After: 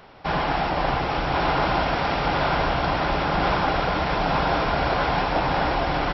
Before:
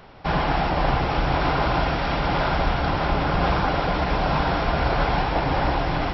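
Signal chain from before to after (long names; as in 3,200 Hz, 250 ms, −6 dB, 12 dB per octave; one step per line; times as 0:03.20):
low-shelf EQ 180 Hz −7 dB
on a send: single-tap delay 1,086 ms −4.5 dB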